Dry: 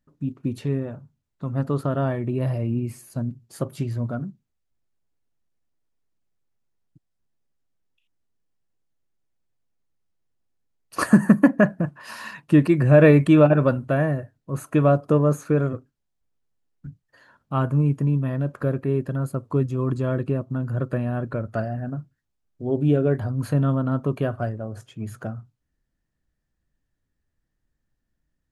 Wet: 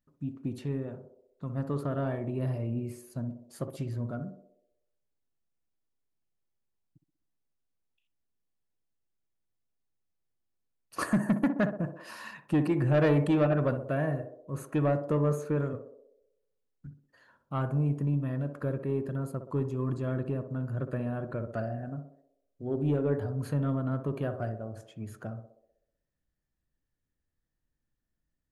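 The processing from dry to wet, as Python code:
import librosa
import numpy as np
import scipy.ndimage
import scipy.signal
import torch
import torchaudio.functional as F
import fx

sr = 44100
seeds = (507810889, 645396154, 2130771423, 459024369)

p1 = 10.0 ** (-11.5 / 20.0) * np.tanh(x / 10.0 ** (-11.5 / 20.0))
p2 = p1 + fx.echo_banded(p1, sr, ms=63, feedback_pct=65, hz=480.0, wet_db=-7, dry=0)
y = p2 * librosa.db_to_amplitude(-7.5)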